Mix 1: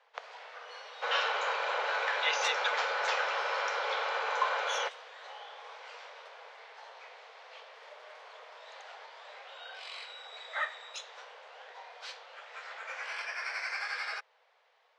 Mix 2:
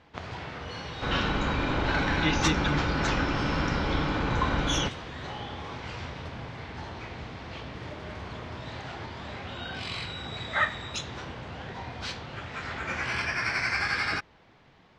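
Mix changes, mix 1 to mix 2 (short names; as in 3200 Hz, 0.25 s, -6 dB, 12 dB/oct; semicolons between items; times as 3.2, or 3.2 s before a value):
first sound +8.0 dB; master: remove steep high-pass 460 Hz 72 dB/oct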